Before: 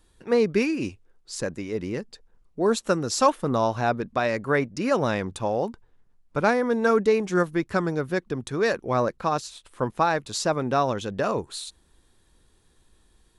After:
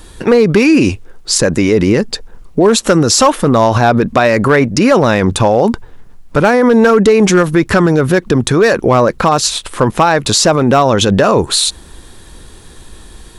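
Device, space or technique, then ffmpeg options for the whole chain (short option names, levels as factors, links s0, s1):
loud club master: -af "acompressor=threshold=0.0708:ratio=2.5,asoftclip=type=hard:threshold=0.119,alimiter=level_in=21.1:limit=0.891:release=50:level=0:latency=1,volume=0.891"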